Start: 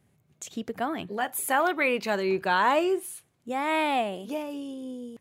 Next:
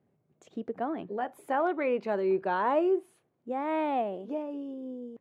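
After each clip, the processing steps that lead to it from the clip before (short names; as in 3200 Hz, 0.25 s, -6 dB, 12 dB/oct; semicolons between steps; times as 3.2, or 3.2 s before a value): band-pass 420 Hz, Q 0.82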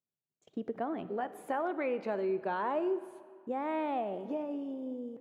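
gate -56 dBFS, range -29 dB; compressor 2.5:1, threshold -32 dBFS, peak gain reduction 7.5 dB; on a send at -14 dB: reverb RT60 2.1 s, pre-delay 5 ms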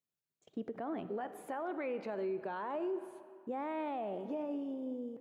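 limiter -29.5 dBFS, peak gain reduction 7 dB; gain -1 dB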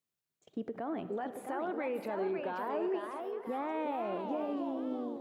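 echoes that change speed 0.751 s, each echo +2 st, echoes 3, each echo -6 dB; gain +2 dB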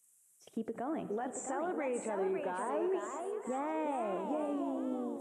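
nonlinear frequency compression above 3700 Hz 1.5:1; resonant high shelf 6000 Hz +11 dB, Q 3; mismatched tape noise reduction encoder only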